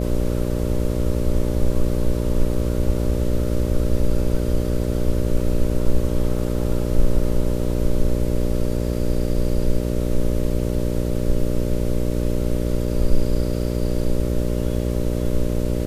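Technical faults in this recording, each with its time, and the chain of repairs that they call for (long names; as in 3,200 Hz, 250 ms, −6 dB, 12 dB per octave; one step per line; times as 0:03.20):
mains buzz 60 Hz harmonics 10 −23 dBFS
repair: hum removal 60 Hz, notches 10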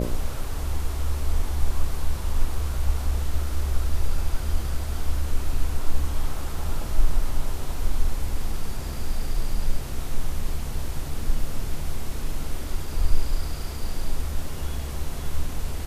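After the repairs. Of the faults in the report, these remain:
none of them is left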